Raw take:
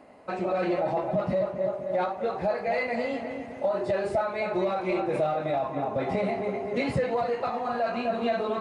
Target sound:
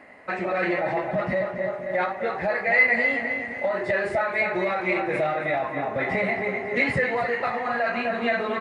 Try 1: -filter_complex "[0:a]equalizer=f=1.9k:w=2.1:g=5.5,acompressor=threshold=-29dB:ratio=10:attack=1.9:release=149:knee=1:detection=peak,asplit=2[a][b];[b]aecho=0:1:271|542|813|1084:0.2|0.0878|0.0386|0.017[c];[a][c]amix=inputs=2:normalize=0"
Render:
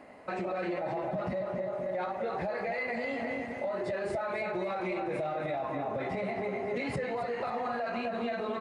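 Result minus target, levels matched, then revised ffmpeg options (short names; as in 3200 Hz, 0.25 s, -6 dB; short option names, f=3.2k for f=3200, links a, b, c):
compressor: peak gain reduction +10 dB; 2000 Hz band -6.0 dB
-filter_complex "[0:a]equalizer=f=1.9k:w=2.1:g=17,asplit=2[a][b];[b]aecho=0:1:271|542|813|1084:0.2|0.0878|0.0386|0.017[c];[a][c]amix=inputs=2:normalize=0"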